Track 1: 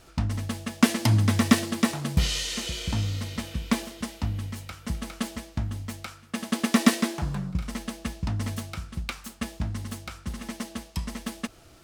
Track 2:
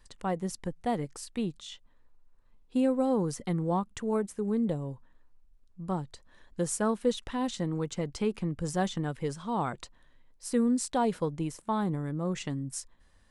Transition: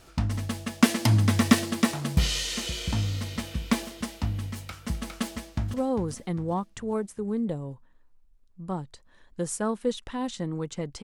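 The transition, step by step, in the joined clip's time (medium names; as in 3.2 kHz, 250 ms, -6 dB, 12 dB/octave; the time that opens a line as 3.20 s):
track 1
5.28–5.74 s: echo throw 400 ms, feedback 50%, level -10 dB
5.74 s: go over to track 2 from 2.94 s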